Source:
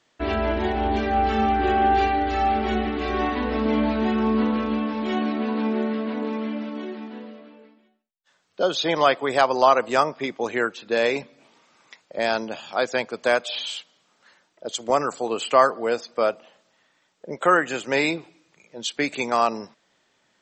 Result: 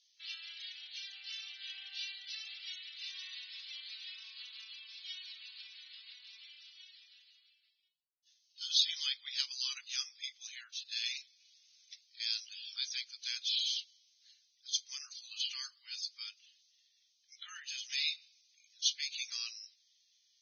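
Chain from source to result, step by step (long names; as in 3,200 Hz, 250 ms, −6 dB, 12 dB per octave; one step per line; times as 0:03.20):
inverse Chebyshev high-pass filter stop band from 610 Hz, stop band 80 dB
Ogg Vorbis 16 kbit/s 16,000 Hz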